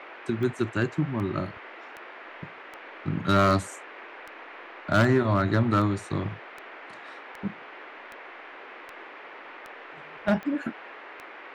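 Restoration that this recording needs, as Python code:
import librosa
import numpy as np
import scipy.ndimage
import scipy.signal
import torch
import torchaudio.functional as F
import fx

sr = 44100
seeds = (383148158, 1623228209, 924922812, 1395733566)

y = fx.fix_declip(x, sr, threshold_db=-14.5)
y = fx.fix_declick_ar(y, sr, threshold=10.0)
y = fx.noise_reduce(y, sr, print_start_s=2.49, print_end_s=2.99, reduce_db=26.0)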